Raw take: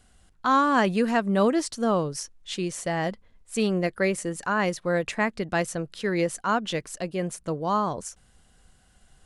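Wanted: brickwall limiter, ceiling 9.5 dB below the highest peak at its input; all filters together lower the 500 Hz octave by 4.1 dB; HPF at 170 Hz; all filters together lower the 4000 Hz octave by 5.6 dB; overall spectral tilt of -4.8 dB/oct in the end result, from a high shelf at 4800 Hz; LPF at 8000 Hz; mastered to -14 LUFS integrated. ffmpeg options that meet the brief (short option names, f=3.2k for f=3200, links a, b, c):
-af "highpass=170,lowpass=8k,equalizer=f=500:t=o:g=-5,equalizer=f=4k:t=o:g=-9,highshelf=f=4.8k:g=3,volume=18dB,alimiter=limit=-3dB:level=0:latency=1"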